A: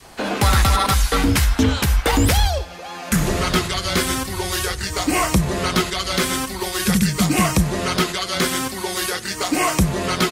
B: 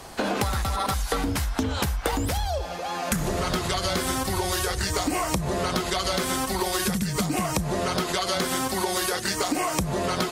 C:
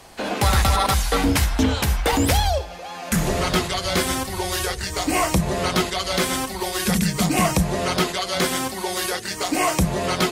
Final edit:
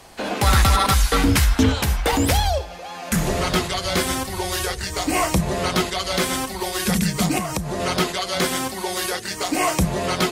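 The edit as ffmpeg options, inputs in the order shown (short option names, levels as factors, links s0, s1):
-filter_complex "[2:a]asplit=3[s0][s1][s2];[s0]atrim=end=0.472[s3];[0:a]atrim=start=0.468:end=1.722[s4];[s1]atrim=start=1.718:end=7.382[s5];[1:a]atrim=start=7.378:end=7.802[s6];[s2]atrim=start=7.798[s7];[s3][s4]acrossfade=d=0.004:c1=hsin:c2=hsin[s8];[s8][s5]acrossfade=d=0.004:c1=hsin:c2=hsin[s9];[s9][s6]acrossfade=d=0.004:c1=hsin:c2=hsin[s10];[s10][s7]acrossfade=d=0.004:c1=hsin:c2=hsin"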